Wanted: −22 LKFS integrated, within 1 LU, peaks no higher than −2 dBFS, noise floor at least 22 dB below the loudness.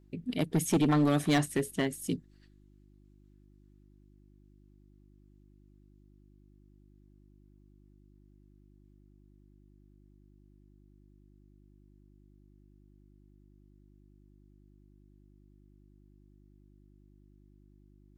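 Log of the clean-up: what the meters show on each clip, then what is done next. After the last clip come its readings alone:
share of clipped samples 0.3%; peaks flattened at −20.5 dBFS; mains hum 50 Hz; hum harmonics up to 350 Hz; level of the hum −58 dBFS; integrated loudness −29.5 LKFS; sample peak −20.5 dBFS; target loudness −22.0 LKFS
→ clipped peaks rebuilt −20.5 dBFS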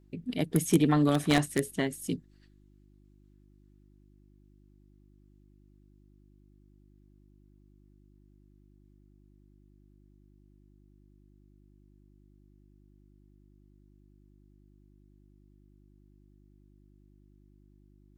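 share of clipped samples 0.0%; mains hum 50 Hz; hum harmonics up to 200 Hz; level of the hum −59 dBFS
→ hum removal 50 Hz, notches 4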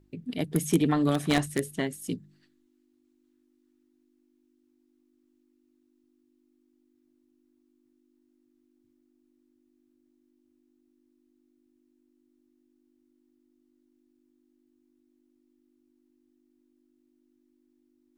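mains hum none found; integrated loudness −28.0 LKFS; sample peak −11.0 dBFS; target loudness −22.0 LKFS
→ level +6 dB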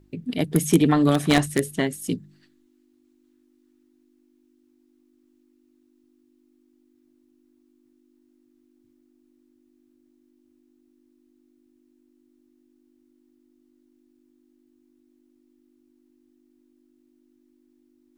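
integrated loudness −22.0 LKFS; sample peak −5.0 dBFS; background noise floor −63 dBFS

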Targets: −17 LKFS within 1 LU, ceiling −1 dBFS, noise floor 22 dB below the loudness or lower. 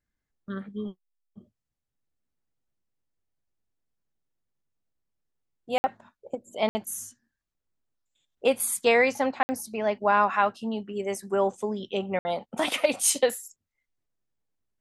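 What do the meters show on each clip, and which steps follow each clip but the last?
number of dropouts 4; longest dropout 60 ms; integrated loudness −26.5 LKFS; sample peak −8.5 dBFS; target loudness −17.0 LKFS
→ repair the gap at 0:05.78/0:06.69/0:09.43/0:12.19, 60 ms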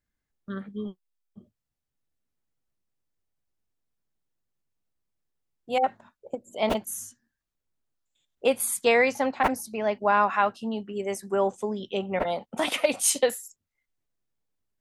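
number of dropouts 0; integrated loudness −26.0 LKFS; sample peak −8.5 dBFS; target loudness −17.0 LKFS
→ level +9 dB
brickwall limiter −1 dBFS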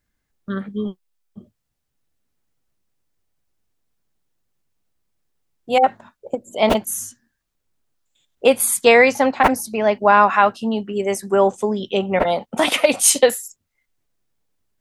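integrated loudness −17.5 LKFS; sample peak −1.0 dBFS; background noise floor −76 dBFS

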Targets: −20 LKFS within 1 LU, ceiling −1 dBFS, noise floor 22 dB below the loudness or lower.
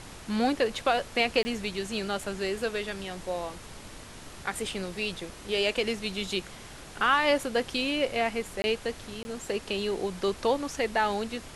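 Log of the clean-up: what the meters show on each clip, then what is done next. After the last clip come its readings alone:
number of dropouts 3; longest dropout 20 ms; background noise floor −46 dBFS; target noise floor −52 dBFS; integrated loudness −29.5 LKFS; sample peak −12.0 dBFS; target loudness −20.0 LKFS
→ repair the gap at 0:01.43/0:08.62/0:09.23, 20 ms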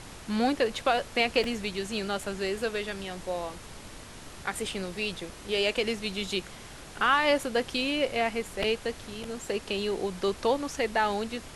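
number of dropouts 0; background noise floor −46 dBFS; target noise floor −52 dBFS
→ noise reduction from a noise print 6 dB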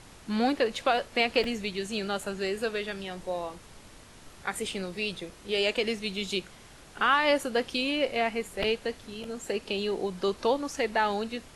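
background noise floor −51 dBFS; target noise floor −52 dBFS
→ noise reduction from a noise print 6 dB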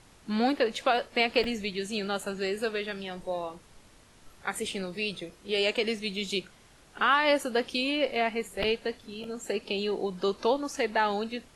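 background noise floor −57 dBFS; integrated loudness −29.5 LKFS; sample peak −12.0 dBFS; target loudness −20.0 LKFS
→ level +9.5 dB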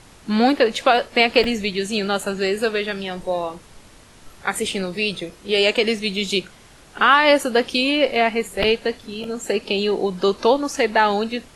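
integrated loudness −20.0 LKFS; sample peak −2.5 dBFS; background noise floor −48 dBFS

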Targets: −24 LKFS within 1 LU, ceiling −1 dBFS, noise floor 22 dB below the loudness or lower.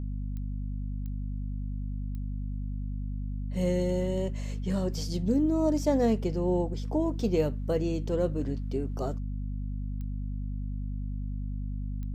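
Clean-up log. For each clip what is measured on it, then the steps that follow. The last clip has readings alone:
number of clicks 5; mains hum 50 Hz; hum harmonics up to 250 Hz; level of the hum −31 dBFS; integrated loudness −31.5 LKFS; sample peak −14.5 dBFS; target loudness −24.0 LKFS
→ click removal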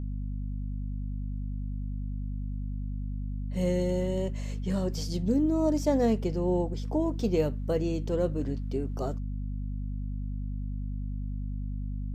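number of clicks 0; mains hum 50 Hz; hum harmonics up to 250 Hz; level of the hum −31 dBFS
→ hum removal 50 Hz, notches 5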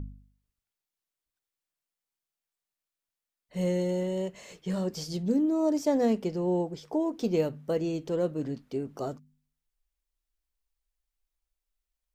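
mains hum none found; integrated loudness −30.0 LKFS; sample peak −15.0 dBFS; target loudness −24.0 LKFS
→ level +6 dB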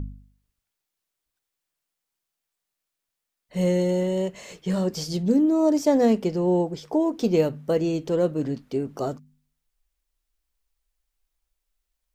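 integrated loudness −24.0 LKFS; sample peak −9.0 dBFS; background noise floor −84 dBFS

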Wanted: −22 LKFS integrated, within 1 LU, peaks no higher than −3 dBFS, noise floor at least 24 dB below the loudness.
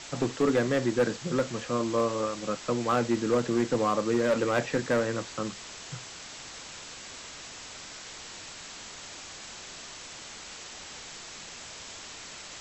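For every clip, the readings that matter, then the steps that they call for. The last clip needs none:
share of clipped samples 0.6%; peaks flattened at −18.5 dBFS; background noise floor −44 dBFS; target noise floor −55 dBFS; integrated loudness −31.0 LKFS; sample peak −18.5 dBFS; target loudness −22.0 LKFS
→ clipped peaks rebuilt −18.5 dBFS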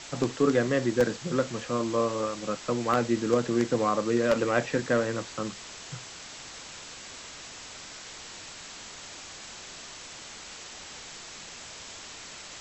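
share of clipped samples 0.0%; background noise floor −44 dBFS; target noise floor −52 dBFS
→ noise reduction from a noise print 8 dB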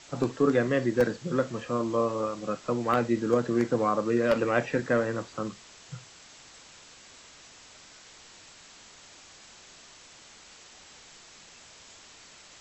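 background noise floor −52 dBFS; integrated loudness −27.5 LKFS; sample peak −9.5 dBFS; target loudness −22.0 LKFS
→ level +5.5 dB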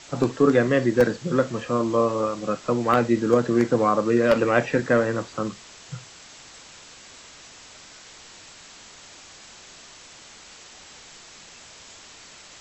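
integrated loudness −22.0 LKFS; sample peak −4.0 dBFS; background noise floor −47 dBFS

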